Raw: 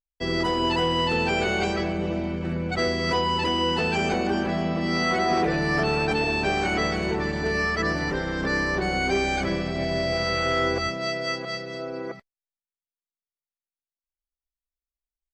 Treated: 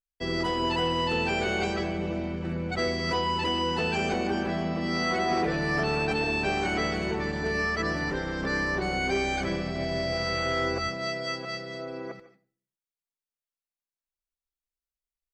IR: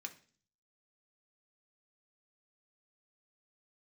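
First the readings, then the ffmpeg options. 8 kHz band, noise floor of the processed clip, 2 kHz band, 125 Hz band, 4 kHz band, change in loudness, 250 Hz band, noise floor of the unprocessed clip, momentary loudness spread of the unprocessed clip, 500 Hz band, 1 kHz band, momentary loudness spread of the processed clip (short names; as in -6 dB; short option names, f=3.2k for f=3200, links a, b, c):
-3.0 dB, under -85 dBFS, -3.0 dB, -3.5 dB, -3.5 dB, -3.5 dB, -3.5 dB, under -85 dBFS, 6 LU, -3.5 dB, -3.5 dB, 6 LU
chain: -filter_complex "[0:a]asplit=2[a][b];[1:a]atrim=start_sample=2205,adelay=147[c];[b][c]afir=irnorm=-1:irlink=0,volume=-11dB[d];[a][d]amix=inputs=2:normalize=0,volume=-3.5dB"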